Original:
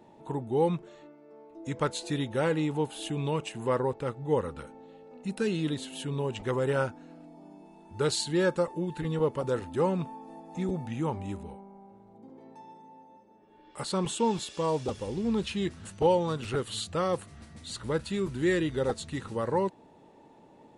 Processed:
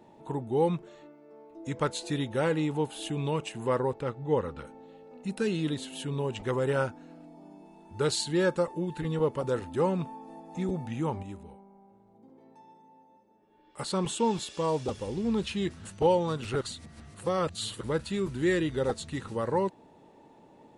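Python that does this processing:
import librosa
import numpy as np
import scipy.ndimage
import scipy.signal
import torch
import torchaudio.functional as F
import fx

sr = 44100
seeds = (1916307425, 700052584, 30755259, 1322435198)

y = fx.lowpass(x, sr, hz=5800.0, slope=12, at=(4.01, 4.65))
y = fx.edit(y, sr, fx.clip_gain(start_s=11.23, length_s=2.56, db=-5.5),
    fx.reverse_span(start_s=16.61, length_s=1.2), tone=tone)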